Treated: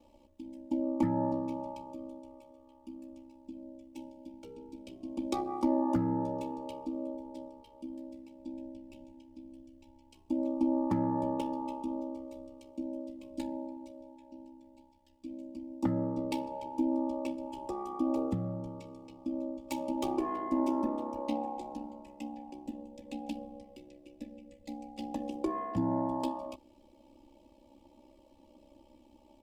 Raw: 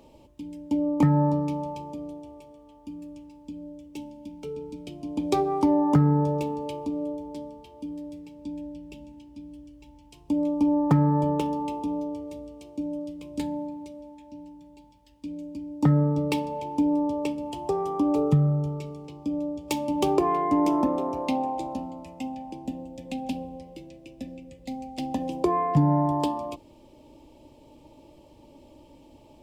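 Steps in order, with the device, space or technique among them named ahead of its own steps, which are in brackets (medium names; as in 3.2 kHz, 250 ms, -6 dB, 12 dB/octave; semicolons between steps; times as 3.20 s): ring-modulated robot voice (ring modulator 33 Hz; comb 3.5 ms, depth 83%); trim -8.5 dB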